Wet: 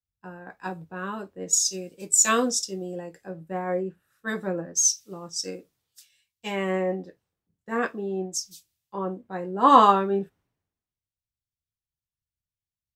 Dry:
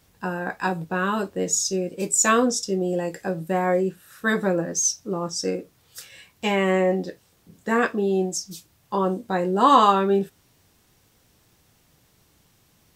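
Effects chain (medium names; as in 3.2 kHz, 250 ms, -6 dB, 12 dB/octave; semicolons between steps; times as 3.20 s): three bands expanded up and down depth 100%; trim -7.5 dB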